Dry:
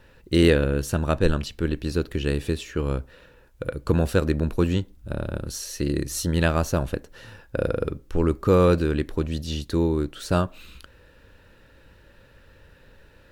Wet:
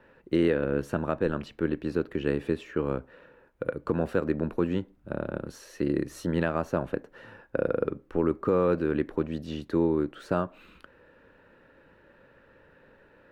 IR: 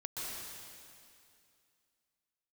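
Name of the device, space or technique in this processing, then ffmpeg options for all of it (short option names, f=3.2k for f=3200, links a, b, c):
DJ mixer with the lows and highs turned down: -filter_complex "[0:a]acrossover=split=160 2300:gain=0.158 1 0.126[a][b][c];[a][b][c]amix=inputs=3:normalize=0,alimiter=limit=-13dB:level=0:latency=1:release=260"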